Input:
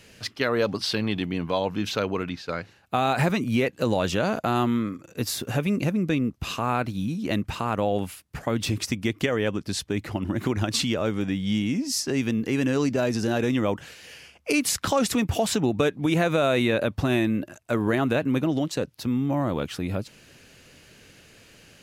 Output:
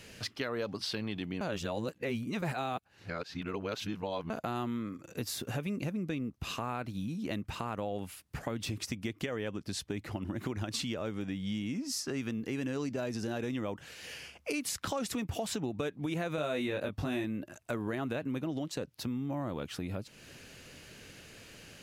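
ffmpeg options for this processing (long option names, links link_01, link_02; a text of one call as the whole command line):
ffmpeg -i in.wav -filter_complex "[0:a]asettb=1/sr,asplit=3[link_01][link_02][link_03];[link_01]atrim=end=11.754[link_04];[link_02]atrim=start=11.75:end=12.33,asetpts=PTS-STARTPTS,afade=type=in:duration=0.004:curve=qsin,afade=type=out:start_time=0.576:duration=0.004:curve=qsin,equalizer=frequency=1300:width_type=o:width=0.46:gain=7[link_05];[link_03]atrim=start=12.326[link_06];[link_04][link_05]acrossfade=duration=0.004:curve1=hsin:curve2=qsin[link_07];[link_07][link_06]acrossfade=duration=0.004:curve1=qsin:curve2=hsin,asettb=1/sr,asplit=3[link_08][link_09][link_10];[link_08]atrim=end=16.364[link_11];[link_09]atrim=start=16.36:end=17.24,asetpts=PTS-STARTPTS,afade=type=in:duration=0.004:curve=qsin,afade=type=out:start_time=0.876:duration=0.004:curve=qsin,asplit=2[link_12][link_13];[link_13]adelay=20,volume=-4dB[link_14];[link_12][link_14]amix=inputs=2:normalize=0,atrim=end_sample=38808[link_15];[link_10]atrim=start=17.236[link_16];[link_11][link_15]acrossfade=duration=0.004:curve1=hsin:curve2=qsin[link_17];[link_17][link_16]acrossfade=duration=0.004:curve1=qsin:curve2=hsin,asplit=3[link_18][link_19][link_20];[link_18]atrim=end=1.412[link_21];[link_19]atrim=start=1.408:end=4.302,asetpts=PTS-STARTPTS,areverse[link_22];[link_20]atrim=start=4.298[link_23];[link_21][link_22]acrossfade=duration=0.004:curve1=hsin:curve2=hsin[link_24];[link_24][link_23]acrossfade=duration=0.004:curve1=hsin:curve2=hsin,acompressor=threshold=-38dB:ratio=2.5" out.wav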